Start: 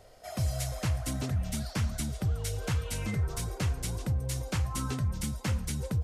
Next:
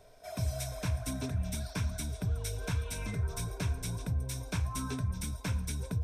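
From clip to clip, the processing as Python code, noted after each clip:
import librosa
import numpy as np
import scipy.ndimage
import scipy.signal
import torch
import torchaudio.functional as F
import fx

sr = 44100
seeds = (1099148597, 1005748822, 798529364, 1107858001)

y = fx.ripple_eq(x, sr, per_octave=1.6, db=9)
y = y * 10.0 ** (-4.0 / 20.0)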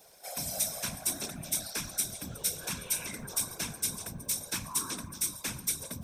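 y = fx.whisperise(x, sr, seeds[0])
y = fx.riaa(y, sr, side='recording')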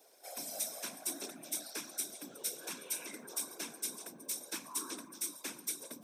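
y = fx.ladder_highpass(x, sr, hz=260.0, resonance_pct=45)
y = y * 10.0 ** (2.0 / 20.0)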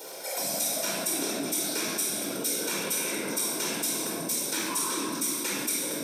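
y = fx.room_shoebox(x, sr, seeds[1], volume_m3=2300.0, walls='mixed', distance_m=4.6)
y = fx.env_flatten(y, sr, amount_pct=50)
y = y * 10.0 ** (4.0 / 20.0)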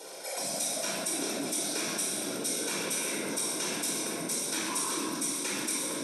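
y = fx.brickwall_lowpass(x, sr, high_hz=12000.0)
y = y + 10.0 ** (-9.0 / 20.0) * np.pad(y, (int(1046 * sr / 1000.0), 0))[:len(y)]
y = y * 10.0 ** (-2.5 / 20.0)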